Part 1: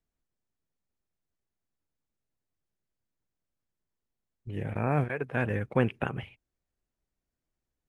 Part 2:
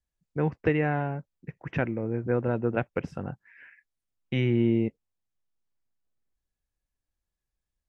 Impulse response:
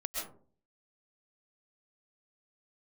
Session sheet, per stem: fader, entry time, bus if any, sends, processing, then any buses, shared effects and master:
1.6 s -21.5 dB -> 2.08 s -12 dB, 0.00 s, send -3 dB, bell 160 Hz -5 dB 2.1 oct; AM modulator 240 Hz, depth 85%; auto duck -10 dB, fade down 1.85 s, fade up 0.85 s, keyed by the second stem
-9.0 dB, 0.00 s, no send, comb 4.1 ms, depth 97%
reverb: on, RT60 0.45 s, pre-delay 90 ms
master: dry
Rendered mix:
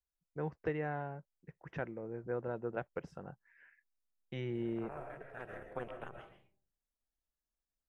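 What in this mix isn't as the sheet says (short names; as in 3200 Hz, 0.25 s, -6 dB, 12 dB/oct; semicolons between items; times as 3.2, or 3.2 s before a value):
stem 2: missing comb 4.1 ms, depth 97%; master: extra fifteen-band EQ 100 Hz -11 dB, 250 Hz -8 dB, 2500 Hz -8 dB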